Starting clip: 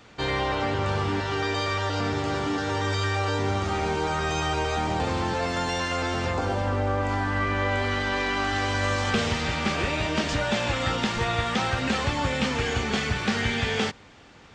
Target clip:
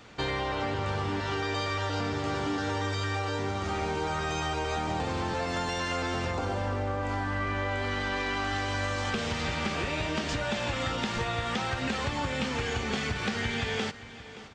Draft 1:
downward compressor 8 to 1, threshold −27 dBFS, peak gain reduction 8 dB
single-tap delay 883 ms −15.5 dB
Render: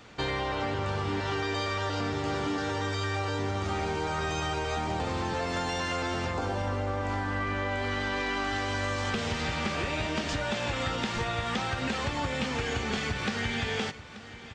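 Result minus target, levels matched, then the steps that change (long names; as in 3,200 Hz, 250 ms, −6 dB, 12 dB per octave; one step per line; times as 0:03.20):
echo 310 ms late
change: single-tap delay 573 ms −15.5 dB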